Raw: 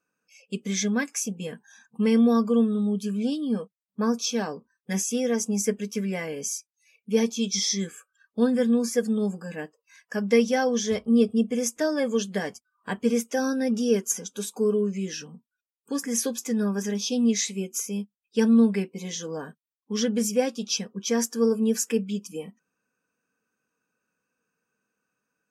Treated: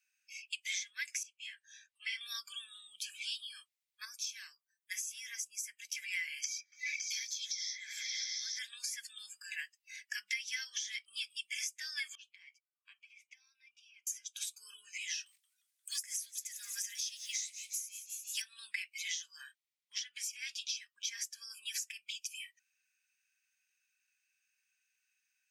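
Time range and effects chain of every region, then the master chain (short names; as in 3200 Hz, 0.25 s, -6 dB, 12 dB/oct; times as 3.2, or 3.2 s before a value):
1.23–2.21 HPF 1100 Hz + air absorption 68 m + ensemble effect
4.05–5.89 bell 3100 Hz -10.5 dB 2.9 oct + notch 820 Hz, Q 11
6.44–8.59 fixed phaser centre 2800 Hz, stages 6 + repeats that get brighter 0.139 s, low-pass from 400 Hz, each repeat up 1 oct, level -3 dB + three-band squash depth 100%
12.15–14.07 compressor 5:1, threshold -30 dBFS + vowel sweep a-u 1.2 Hz
15.26–18.42 bell 10000 Hz +14 dB 1.7 oct + short-mantissa float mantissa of 4-bit + frequency-shifting echo 0.176 s, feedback 55%, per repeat +120 Hz, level -16 dB
19.43–20.82 high shelf 8400 Hz -6.5 dB + compressor 5:1, threshold -26 dBFS
whole clip: elliptic high-pass 2000 Hz, stop band 70 dB; compressor 20:1, threshold -41 dBFS; high shelf 4400 Hz -6 dB; gain +8.5 dB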